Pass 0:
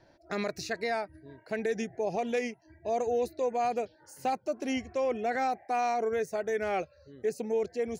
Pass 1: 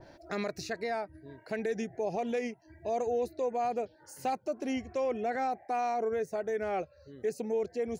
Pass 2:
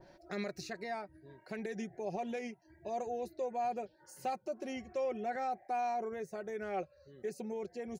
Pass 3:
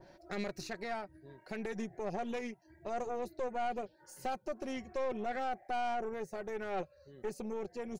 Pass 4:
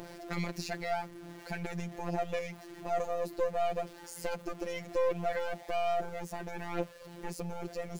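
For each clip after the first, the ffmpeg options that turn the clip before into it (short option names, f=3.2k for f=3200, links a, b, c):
-filter_complex "[0:a]asplit=2[a][b];[b]alimiter=level_in=4dB:limit=-24dB:level=0:latency=1:release=119,volume=-4dB,volume=-0.5dB[c];[a][c]amix=inputs=2:normalize=0,acompressor=mode=upward:threshold=-40dB:ratio=2.5,adynamicequalizer=threshold=0.00891:dfrequency=1500:dqfactor=0.7:tfrequency=1500:tqfactor=0.7:attack=5:release=100:ratio=0.375:range=3.5:mode=cutabove:tftype=highshelf,volume=-5dB"
-af "aecho=1:1:5.4:0.48,volume=-6dB"
-af "aeval=exprs='(tanh(56.2*val(0)+0.6)-tanh(0.6))/56.2':c=same,volume=4dB"
-af "aeval=exprs='val(0)+0.5*0.00316*sgn(val(0))':c=same,afftfilt=real='hypot(re,im)*cos(PI*b)':imag='0':win_size=1024:overlap=0.75,acompressor=mode=upward:threshold=-48dB:ratio=2.5,volume=6.5dB"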